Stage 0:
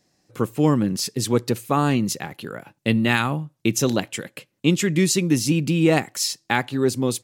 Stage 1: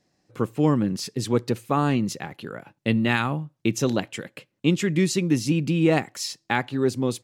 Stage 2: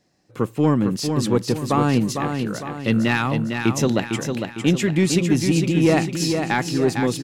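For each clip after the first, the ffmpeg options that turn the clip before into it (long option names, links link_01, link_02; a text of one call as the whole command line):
ffmpeg -i in.wav -af "lowpass=frequency=4000:poles=1,volume=-2dB" out.wav
ffmpeg -i in.wav -filter_complex "[0:a]asoftclip=type=tanh:threshold=-10.5dB,asplit=2[link_01][link_02];[link_02]aecho=0:1:454|908|1362|1816|2270|2724:0.501|0.236|0.111|0.052|0.0245|0.0115[link_03];[link_01][link_03]amix=inputs=2:normalize=0,volume=3.5dB" out.wav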